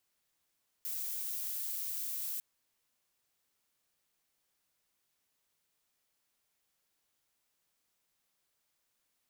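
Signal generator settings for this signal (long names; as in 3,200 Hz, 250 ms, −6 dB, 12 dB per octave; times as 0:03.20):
noise violet, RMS −38 dBFS 1.55 s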